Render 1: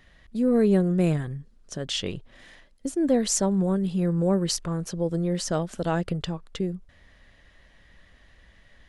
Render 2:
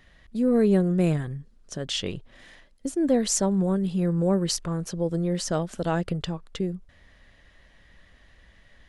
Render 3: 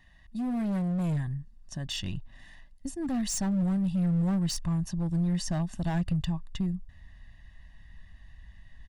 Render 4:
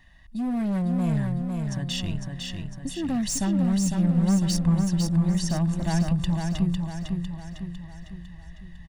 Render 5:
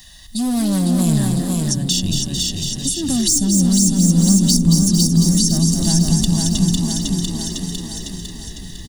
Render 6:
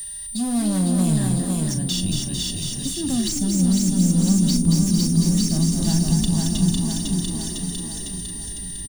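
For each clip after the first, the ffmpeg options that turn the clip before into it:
ffmpeg -i in.wav -af anull out.wav
ffmpeg -i in.wav -af "aecho=1:1:1.1:0.97,asoftclip=type=hard:threshold=-20dB,asubboost=boost=2.5:cutoff=220,volume=-8dB" out.wav
ffmpeg -i in.wav -af "aecho=1:1:503|1006|1509|2012|2515|3018|3521:0.596|0.304|0.155|0.079|0.0403|0.0206|0.0105,volume=3.5dB" out.wav
ffmpeg -i in.wav -filter_complex "[0:a]asplit=7[link_01][link_02][link_03][link_04][link_05][link_06][link_07];[link_02]adelay=222,afreqshift=45,volume=-8.5dB[link_08];[link_03]adelay=444,afreqshift=90,volume=-13.9dB[link_09];[link_04]adelay=666,afreqshift=135,volume=-19.2dB[link_10];[link_05]adelay=888,afreqshift=180,volume=-24.6dB[link_11];[link_06]adelay=1110,afreqshift=225,volume=-29.9dB[link_12];[link_07]adelay=1332,afreqshift=270,volume=-35.3dB[link_13];[link_01][link_08][link_09][link_10][link_11][link_12][link_13]amix=inputs=7:normalize=0,aexciter=amount=12.3:drive=4:freq=3400,acrossover=split=360[link_14][link_15];[link_15]acompressor=threshold=-32dB:ratio=2.5[link_16];[link_14][link_16]amix=inputs=2:normalize=0,volume=7.5dB" out.wav
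ffmpeg -i in.wav -filter_complex "[0:a]aeval=exprs='val(0)+0.0631*sin(2*PI*9100*n/s)':channel_layout=same,acrossover=split=160|1800|4000[link_01][link_02][link_03][link_04];[link_04]asoftclip=type=tanh:threshold=-24.5dB[link_05];[link_01][link_02][link_03][link_05]amix=inputs=4:normalize=0,asplit=2[link_06][link_07];[link_07]adelay=38,volume=-11dB[link_08];[link_06][link_08]amix=inputs=2:normalize=0,volume=-3.5dB" out.wav

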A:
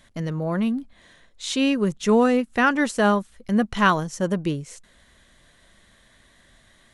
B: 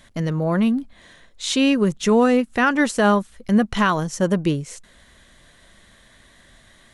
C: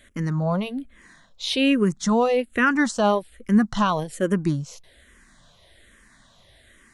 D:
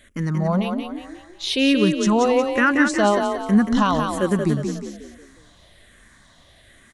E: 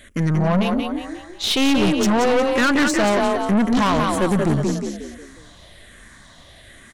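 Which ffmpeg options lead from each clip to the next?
ffmpeg -i in.wav -af "alimiter=limit=-12.5dB:level=0:latency=1:release=166,volume=4.5dB" out.wav
ffmpeg -i in.wav -filter_complex "[0:a]asplit=2[link_01][link_02];[link_02]afreqshift=-1.2[link_03];[link_01][link_03]amix=inputs=2:normalize=1" out.wav
ffmpeg -i in.wav -filter_complex "[0:a]asplit=6[link_01][link_02][link_03][link_04][link_05][link_06];[link_02]adelay=180,afreqshift=32,volume=-5.5dB[link_07];[link_03]adelay=360,afreqshift=64,volume=-13dB[link_08];[link_04]adelay=540,afreqshift=96,volume=-20.6dB[link_09];[link_05]adelay=720,afreqshift=128,volume=-28.1dB[link_10];[link_06]adelay=900,afreqshift=160,volume=-35.6dB[link_11];[link_01][link_07][link_08][link_09][link_10][link_11]amix=inputs=6:normalize=0,volume=1.5dB" out.wav
ffmpeg -i in.wav -af "aeval=exprs='(tanh(12.6*val(0)+0.35)-tanh(0.35))/12.6':channel_layout=same,volume=7.5dB" out.wav

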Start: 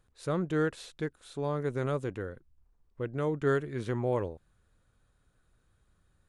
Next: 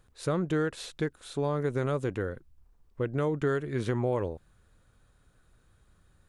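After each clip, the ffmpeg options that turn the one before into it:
ffmpeg -i in.wav -af "acompressor=threshold=-31dB:ratio=4,volume=6dB" out.wav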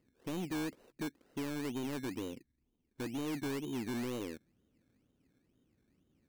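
ffmpeg -i in.wav -af "bandpass=frequency=270:width_type=q:width=2.9:csg=0,acrusher=samples=18:mix=1:aa=0.000001:lfo=1:lforange=10.8:lforate=2.1,asoftclip=type=tanh:threshold=-38.5dB,volume=4.5dB" out.wav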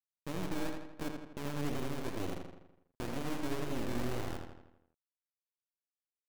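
ffmpeg -i in.wav -filter_complex "[0:a]acrusher=bits=5:dc=4:mix=0:aa=0.000001,tremolo=f=290:d=0.788,asplit=2[link_01][link_02];[link_02]adelay=82,lowpass=frequency=4700:poles=1,volume=-4.5dB,asplit=2[link_03][link_04];[link_04]adelay=82,lowpass=frequency=4700:poles=1,volume=0.54,asplit=2[link_05][link_06];[link_06]adelay=82,lowpass=frequency=4700:poles=1,volume=0.54,asplit=2[link_07][link_08];[link_08]adelay=82,lowpass=frequency=4700:poles=1,volume=0.54,asplit=2[link_09][link_10];[link_10]adelay=82,lowpass=frequency=4700:poles=1,volume=0.54,asplit=2[link_11][link_12];[link_12]adelay=82,lowpass=frequency=4700:poles=1,volume=0.54,asplit=2[link_13][link_14];[link_14]adelay=82,lowpass=frequency=4700:poles=1,volume=0.54[link_15];[link_01][link_03][link_05][link_07][link_09][link_11][link_13][link_15]amix=inputs=8:normalize=0,volume=8dB" out.wav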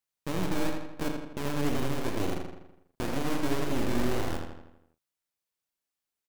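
ffmpeg -i in.wav -filter_complex "[0:a]asplit=2[link_01][link_02];[link_02]adelay=37,volume=-10dB[link_03];[link_01][link_03]amix=inputs=2:normalize=0,volume=7dB" out.wav

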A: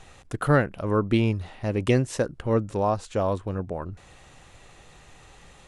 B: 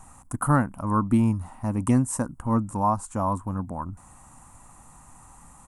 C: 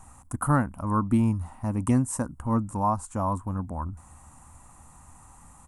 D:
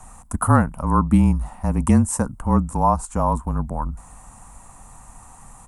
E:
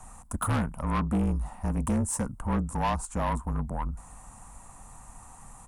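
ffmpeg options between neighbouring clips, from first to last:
ffmpeg -i in.wav -af "firequalizer=gain_entry='entry(150,0);entry(250,6);entry(400,-14);entry(960,8);entry(1700,-8);entry(3600,-18);entry(8300,11)':delay=0.05:min_phase=1" out.wav
ffmpeg -i in.wav -af "equalizer=frequency=77:width=4.6:gain=11,volume=-2dB" out.wav
ffmpeg -i in.wav -af "afreqshift=-32,volume=7dB" out.wav
ffmpeg -i in.wav -af "asoftclip=type=tanh:threshold=-18.5dB,volume=-4dB" out.wav

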